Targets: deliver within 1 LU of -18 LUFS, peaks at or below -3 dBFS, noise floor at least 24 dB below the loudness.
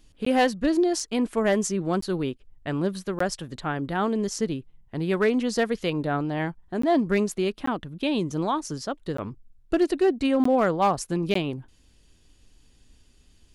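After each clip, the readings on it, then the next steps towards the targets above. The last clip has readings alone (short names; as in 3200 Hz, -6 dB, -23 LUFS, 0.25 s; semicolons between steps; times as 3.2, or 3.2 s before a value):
clipped 0.3%; flat tops at -14.0 dBFS; dropouts 8; longest dropout 14 ms; loudness -25.5 LUFS; peak -14.0 dBFS; loudness target -18.0 LUFS
-> clip repair -14 dBFS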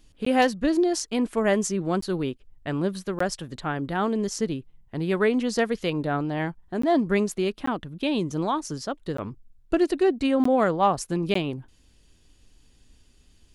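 clipped 0.0%; dropouts 8; longest dropout 14 ms
-> interpolate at 0.25/2.01/3.19/6.82/7.66/9.17/10.44/11.34, 14 ms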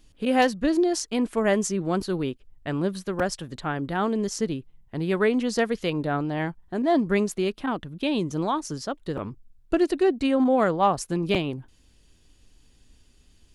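dropouts 0; loudness -25.5 LUFS; peak -8.0 dBFS; loudness target -18.0 LUFS
-> gain +7.5 dB; limiter -3 dBFS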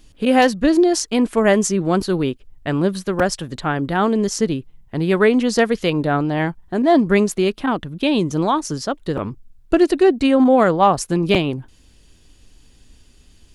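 loudness -18.0 LUFS; peak -3.0 dBFS; noise floor -51 dBFS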